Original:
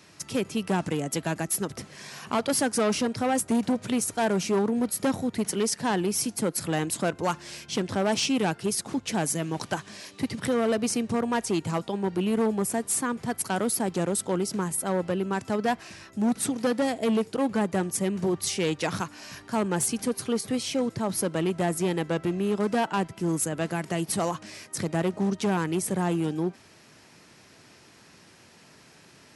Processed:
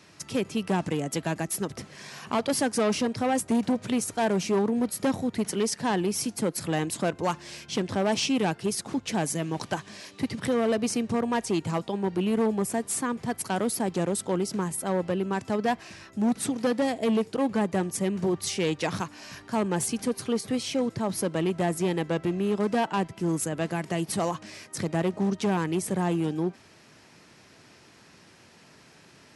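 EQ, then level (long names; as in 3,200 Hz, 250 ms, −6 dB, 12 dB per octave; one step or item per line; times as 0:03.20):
dynamic equaliser 1,400 Hz, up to −5 dB, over −51 dBFS, Q 7.9
high-shelf EQ 9,100 Hz −6.5 dB
0.0 dB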